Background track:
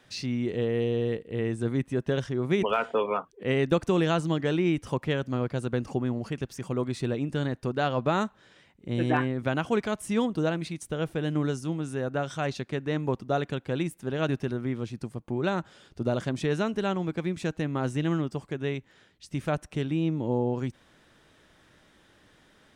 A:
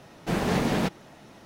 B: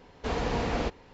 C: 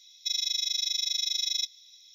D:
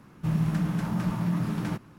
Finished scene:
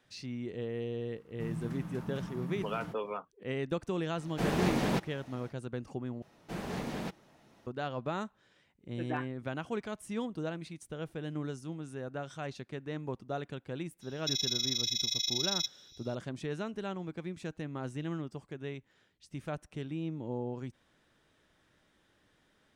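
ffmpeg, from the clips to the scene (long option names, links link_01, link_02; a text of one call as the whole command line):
ffmpeg -i bed.wav -i cue0.wav -i cue1.wav -i cue2.wav -i cue3.wav -filter_complex "[1:a]asplit=2[link_01][link_02];[0:a]volume=-10dB,asplit=2[link_03][link_04];[link_03]atrim=end=6.224[link_05];[link_02]atrim=end=1.45,asetpts=PTS-STARTPTS,volume=-12.5dB[link_06];[link_04]atrim=start=7.666[link_07];[4:a]atrim=end=1.98,asetpts=PTS-STARTPTS,volume=-13dB,afade=type=in:duration=0.004:curve=hsin,afade=type=out:start_time=1.976:duration=0.004:curve=hsin,adelay=1160[link_08];[link_01]atrim=end=1.45,asetpts=PTS-STARTPTS,volume=-5dB,afade=type=in:duration=0.1,afade=type=out:start_time=1.35:duration=0.1,adelay=4110[link_09];[3:a]atrim=end=2.14,asetpts=PTS-STARTPTS,volume=-3.5dB,afade=type=in:duration=0.004:curve=hsin,afade=type=out:start_time=2.136:duration=0.004:curve=hsin,adelay=14010[link_10];[link_05][link_06]acrossfade=duration=0.004:curve1=hsin:curve2=hsin[link_11];[link_11][link_07]acrossfade=duration=0.004:curve1=hsin:curve2=hsin[link_12];[link_12][link_08][link_09][link_10]amix=inputs=4:normalize=0" out.wav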